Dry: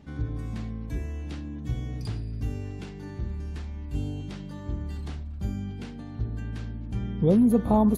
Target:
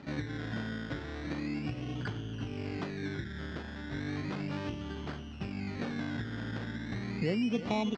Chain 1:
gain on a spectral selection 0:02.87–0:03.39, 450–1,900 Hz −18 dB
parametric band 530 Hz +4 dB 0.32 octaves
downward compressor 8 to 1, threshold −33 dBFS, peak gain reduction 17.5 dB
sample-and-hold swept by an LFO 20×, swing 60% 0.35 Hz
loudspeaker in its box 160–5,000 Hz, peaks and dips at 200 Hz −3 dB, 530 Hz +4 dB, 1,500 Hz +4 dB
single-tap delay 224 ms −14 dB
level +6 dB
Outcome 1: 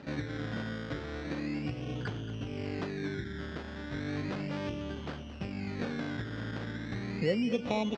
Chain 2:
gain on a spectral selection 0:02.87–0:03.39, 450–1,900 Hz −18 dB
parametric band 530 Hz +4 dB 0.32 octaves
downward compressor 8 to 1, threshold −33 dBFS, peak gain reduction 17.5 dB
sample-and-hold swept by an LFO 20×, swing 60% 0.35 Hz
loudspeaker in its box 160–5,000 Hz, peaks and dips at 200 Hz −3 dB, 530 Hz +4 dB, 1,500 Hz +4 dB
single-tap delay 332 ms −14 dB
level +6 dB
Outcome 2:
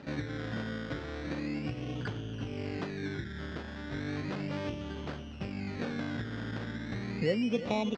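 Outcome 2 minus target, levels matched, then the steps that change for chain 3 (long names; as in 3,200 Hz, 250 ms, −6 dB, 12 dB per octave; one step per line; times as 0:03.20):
500 Hz band +2.5 dB
change: parametric band 530 Hz −7 dB 0.32 octaves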